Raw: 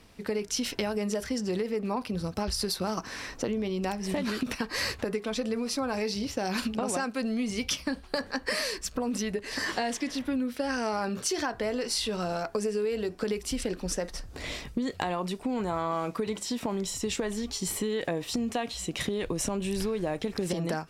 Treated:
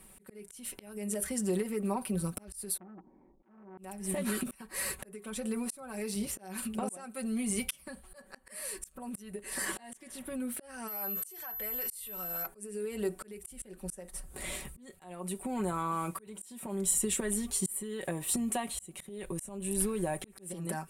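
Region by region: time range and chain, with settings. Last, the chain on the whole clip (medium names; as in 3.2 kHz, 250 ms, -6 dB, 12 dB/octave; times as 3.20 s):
2.77–3.78 s: cascade formant filter u + transformer saturation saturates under 1.5 kHz
10.87–12.45 s: peaking EQ 240 Hz -12 dB 2.3 oct + compression 1.5:1, threshold -36 dBFS + whistle 12 kHz -39 dBFS
whole clip: resonant high shelf 7.1 kHz +11.5 dB, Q 3; comb 5.3 ms, depth 70%; slow attack 507 ms; trim -4.5 dB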